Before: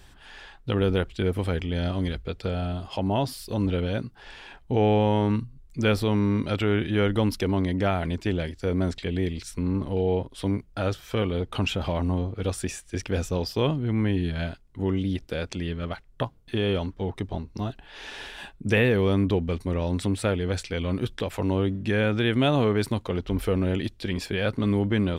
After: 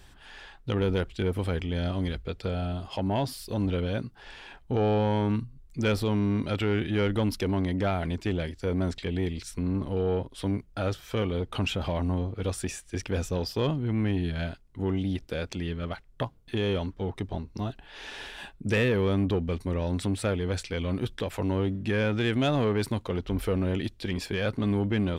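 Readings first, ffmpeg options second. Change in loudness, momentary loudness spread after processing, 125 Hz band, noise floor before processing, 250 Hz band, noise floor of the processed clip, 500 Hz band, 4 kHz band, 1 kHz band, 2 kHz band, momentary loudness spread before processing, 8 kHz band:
−2.5 dB, 10 LU, −2.5 dB, −53 dBFS, −2.5 dB, −54 dBFS, −3.0 dB, −3.0 dB, −3.0 dB, −3.0 dB, 11 LU, −1.5 dB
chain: -af "asoftclip=type=tanh:threshold=-16dB,volume=-1.5dB"

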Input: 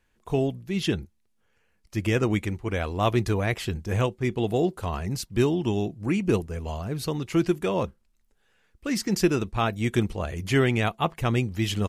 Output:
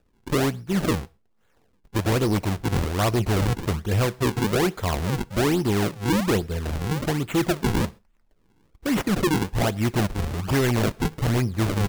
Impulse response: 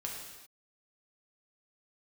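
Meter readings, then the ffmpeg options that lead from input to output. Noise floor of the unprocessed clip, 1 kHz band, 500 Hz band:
−69 dBFS, +2.5 dB, +0.5 dB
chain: -filter_complex "[0:a]acrusher=samples=41:mix=1:aa=0.000001:lfo=1:lforange=65.6:lforate=1.2,asoftclip=type=hard:threshold=-22dB,asplit=2[link_01][link_02];[1:a]atrim=start_sample=2205,atrim=end_sample=6174[link_03];[link_02][link_03]afir=irnorm=-1:irlink=0,volume=-20dB[link_04];[link_01][link_04]amix=inputs=2:normalize=0,volume=4dB"

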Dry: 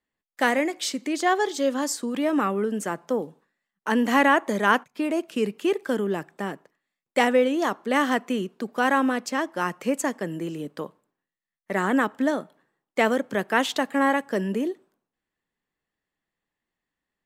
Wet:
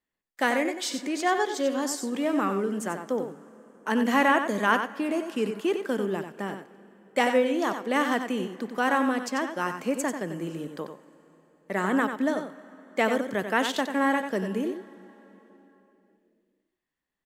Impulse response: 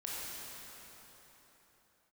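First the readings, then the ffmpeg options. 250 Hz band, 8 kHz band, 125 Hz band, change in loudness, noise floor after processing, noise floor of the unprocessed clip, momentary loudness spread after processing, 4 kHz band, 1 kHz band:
−2.5 dB, −2.0 dB, −2.5 dB, −2.5 dB, −84 dBFS, below −85 dBFS, 11 LU, −2.5 dB, −2.5 dB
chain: -filter_complex "[0:a]aecho=1:1:92:0.398,asplit=2[link_01][link_02];[1:a]atrim=start_sample=2205[link_03];[link_02][link_03]afir=irnorm=-1:irlink=0,volume=-18.5dB[link_04];[link_01][link_04]amix=inputs=2:normalize=0,volume=-3.5dB"

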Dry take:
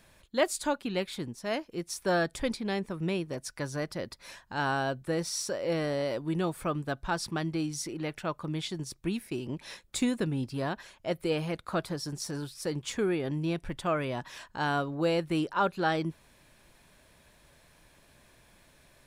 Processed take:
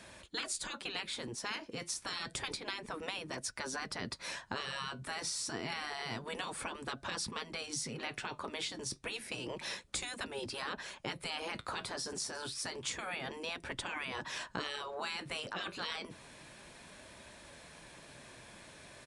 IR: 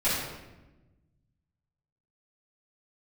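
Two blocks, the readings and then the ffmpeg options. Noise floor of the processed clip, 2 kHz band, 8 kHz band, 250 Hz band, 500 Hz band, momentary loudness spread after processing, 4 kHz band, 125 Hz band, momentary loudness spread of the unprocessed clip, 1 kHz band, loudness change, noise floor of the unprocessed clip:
−56 dBFS, −3.5 dB, −1.0 dB, −15.0 dB, −13.0 dB, 15 LU, +0.5 dB, −15.0 dB, 8 LU, −8.0 dB, −7.0 dB, −62 dBFS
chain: -filter_complex "[0:a]afftfilt=real='re*lt(hypot(re,im),0.0631)':imag='im*lt(hypot(re,im),0.0631)':win_size=1024:overlap=0.75,highpass=frequency=130:poles=1,acrossover=split=350[link_01][link_02];[link_02]acompressor=threshold=-46dB:ratio=3[link_03];[link_01][link_03]amix=inputs=2:normalize=0,aresample=22050,aresample=44100,flanger=delay=3.2:depth=6.7:regen=-67:speed=0.29:shape=sinusoidal,volume=12dB"

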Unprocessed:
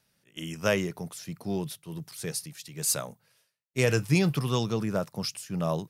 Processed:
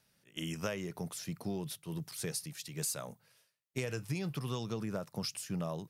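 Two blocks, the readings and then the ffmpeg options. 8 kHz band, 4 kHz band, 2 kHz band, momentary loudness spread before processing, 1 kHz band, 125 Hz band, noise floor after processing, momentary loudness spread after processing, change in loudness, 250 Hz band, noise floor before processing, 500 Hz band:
−7.5 dB, −7.0 dB, −11.5 dB, 15 LU, −9.5 dB, −9.5 dB, −74 dBFS, 5 LU, −9.5 dB, −8.5 dB, −73 dBFS, −10.5 dB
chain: -af "acompressor=threshold=-32dB:ratio=12,volume=-1dB"

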